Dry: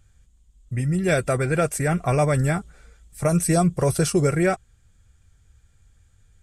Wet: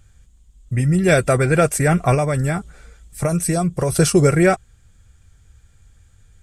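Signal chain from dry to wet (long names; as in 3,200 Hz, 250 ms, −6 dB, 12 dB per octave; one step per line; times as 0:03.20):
0:02.14–0:03.92: downward compressor 4 to 1, threshold −23 dBFS, peak gain reduction 7.5 dB
level +6 dB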